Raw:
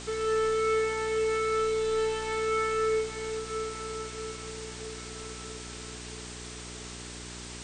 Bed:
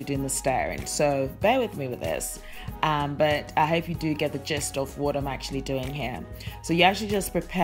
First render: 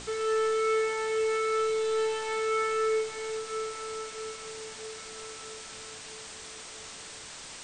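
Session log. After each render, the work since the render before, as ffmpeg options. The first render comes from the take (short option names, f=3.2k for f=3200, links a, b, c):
-af "bandreject=f=60:t=h:w=4,bandreject=f=120:t=h:w=4,bandreject=f=180:t=h:w=4,bandreject=f=240:t=h:w=4,bandreject=f=300:t=h:w=4,bandreject=f=360:t=h:w=4,bandreject=f=420:t=h:w=4"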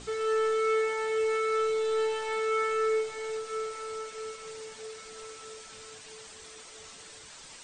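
-af "afftdn=nr=8:nf=-45"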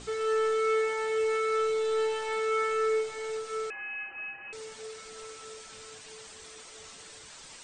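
-filter_complex "[0:a]asettb=1/sr,asplit=3[a][b][c];[a]atrim=end=3.704[d];[b]atrim=start=3.7:end=4.53,asetpts=PTS-STARTPTS,afade=t=in:d=0.004:c=qsin,afade=t=out:st=0.826:d=0.004:c=qsin,lowpass=f=2.6k:t=q:w=0.5098,lowpass=f=2.6k:t=q:w=0.6013,lowpass=f=2.6k:t=q:w=0.9,lowpass=f=2.6k:t=q:w=2.563,afreqshift=-3000[e];[c]atrim=start=4.526[f];[d][e]acrossfade=d=0.004:c1=hsin:c2=qsin[g];[g][f]acrossfade=d=0.004:c1=qsin:c2=hsin"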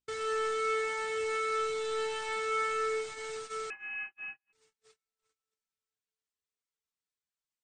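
-af "agate=range=-49dB:threshold=-38dB:ratio=16:detection=peak,equalizer=f=540:t=o:w=1.1:g=-8.5"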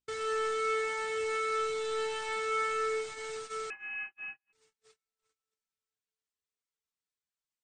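-af anull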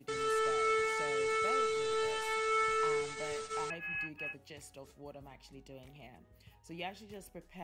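-filter_complex "[1:a]volume=-23dB[a];[0:a][a]amix=inputs=2:normalize=0"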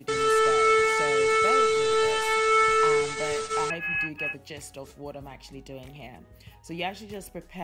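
-af "volume=10.5dB"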